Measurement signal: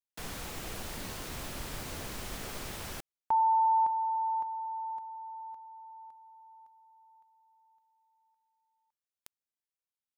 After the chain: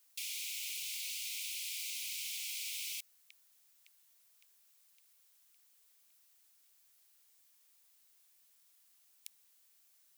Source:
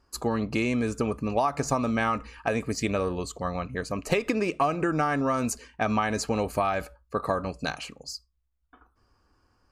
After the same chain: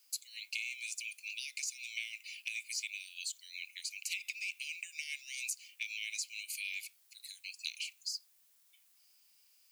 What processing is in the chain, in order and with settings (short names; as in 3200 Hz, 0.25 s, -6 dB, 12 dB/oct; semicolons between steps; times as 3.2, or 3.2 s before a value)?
steep high-pass 2200 Hz 96 dB/oct; compressor 6:1, threshold -42 dBFS; added noise blue -74 dBFS; gain +5.5 dB